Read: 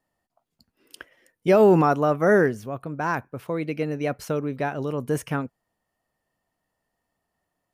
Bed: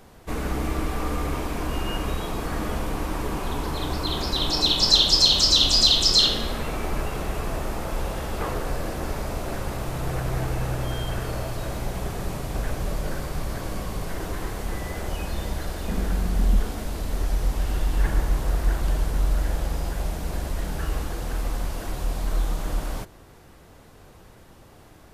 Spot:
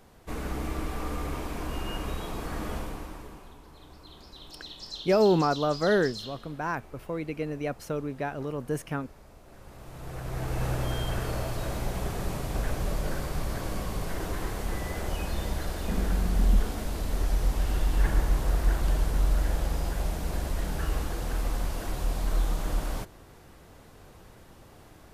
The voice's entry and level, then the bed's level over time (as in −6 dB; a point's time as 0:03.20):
3.60 s, −5.5 dB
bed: 0:02.77 −6 dB
0:03.60 −23 dB
0:09.44 −23 dB
0:10.65 −2 dB